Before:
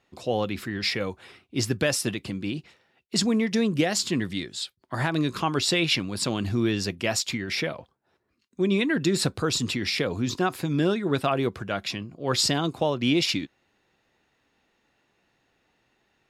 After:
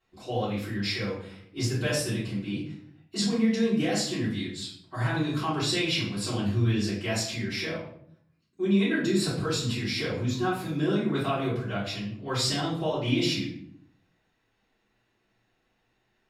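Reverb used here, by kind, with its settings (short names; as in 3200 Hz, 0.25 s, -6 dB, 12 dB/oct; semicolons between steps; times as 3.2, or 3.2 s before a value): shoebox room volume 90 m³, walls mixed, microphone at 3.7 m; gain -16.5 dB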